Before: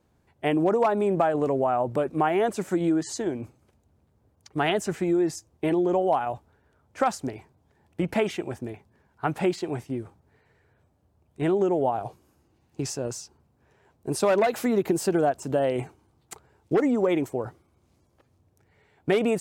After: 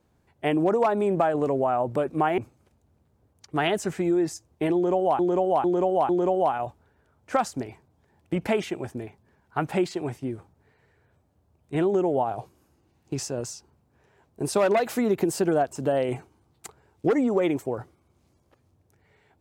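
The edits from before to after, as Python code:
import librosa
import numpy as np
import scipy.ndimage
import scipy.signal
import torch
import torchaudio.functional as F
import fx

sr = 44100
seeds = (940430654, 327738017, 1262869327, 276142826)

y = fx.edit(x, sr, fx.cut(start_s=2.38, length_s=1.02),
    fx.repeat(start_s=5.76, length_s=0.45, count=4), tone=tone)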